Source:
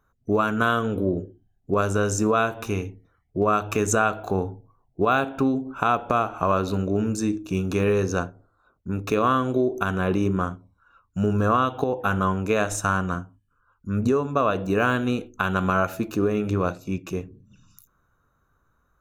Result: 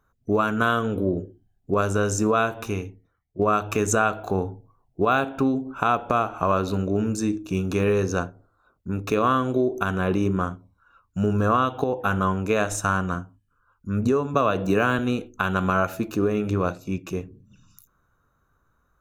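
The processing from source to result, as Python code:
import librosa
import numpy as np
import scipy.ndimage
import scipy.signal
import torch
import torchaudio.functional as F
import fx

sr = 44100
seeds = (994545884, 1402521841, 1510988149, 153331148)

y = fx.band_squash(x, sr, depth_pct=70, at=(14.34, 14.99))
y = fx.edit(y, sr, fx.fade_out_to(start_s=2.6, length_s=0.79, floor_db=-14.5), tone=tone)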